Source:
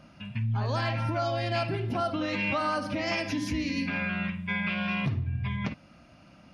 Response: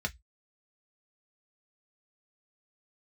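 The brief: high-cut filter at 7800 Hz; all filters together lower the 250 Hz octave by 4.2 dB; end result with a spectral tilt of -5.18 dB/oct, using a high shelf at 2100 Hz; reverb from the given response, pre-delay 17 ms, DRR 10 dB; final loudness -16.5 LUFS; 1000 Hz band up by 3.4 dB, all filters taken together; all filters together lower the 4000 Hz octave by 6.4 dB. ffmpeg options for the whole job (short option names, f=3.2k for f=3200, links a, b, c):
-filter_complex "[0:a]lowpass=7.8k,equalizer=f=250:t=o:g=-6,equalizer=f=1k:t=o:g=6.5,highshelf=f=2.1k:g=-4.5,equalizer=f=4k:t=o:g=-4.5,asplit=2[a][b];[1:a]atrim=start_sample=2205,adelay=17[c];[b][c]afir=irnorm=-1:irlink=0,volume=-14.5dB[d];[a][d]amix=inputs=2:normalize=0,volume=14dB"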